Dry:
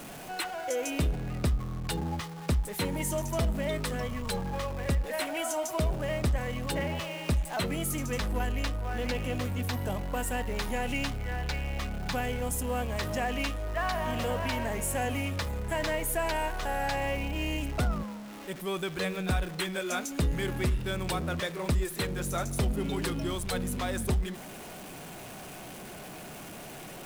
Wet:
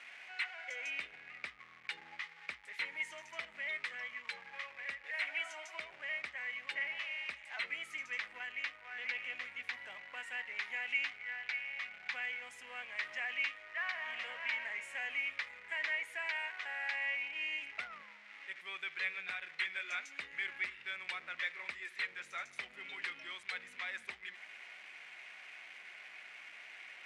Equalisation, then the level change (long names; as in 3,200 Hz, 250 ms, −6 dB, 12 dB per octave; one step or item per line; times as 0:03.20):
resonant band-pass 2,100 Hz, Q 4.4
high-frequency loss of the air 78 metres
spectral tilt +2.5 dB per octave
+3.0 dB